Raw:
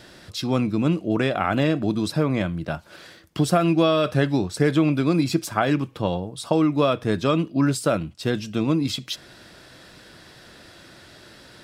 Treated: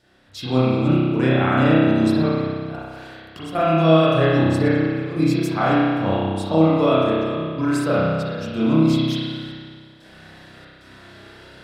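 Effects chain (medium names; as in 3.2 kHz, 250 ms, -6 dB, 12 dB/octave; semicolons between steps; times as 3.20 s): trance gate "..xxxx.xxxxxxx." 93 bpm -12 dB; spring tank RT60 1.8 s, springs 31 ms, chirp 30 ms, DRR -9.5 dB; trim -5.5 dB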